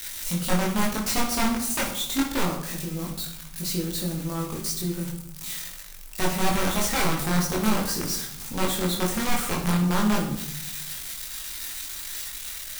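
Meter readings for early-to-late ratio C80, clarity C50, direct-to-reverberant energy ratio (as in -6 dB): 9.5 dB, 6.0 dB, -2.5 dB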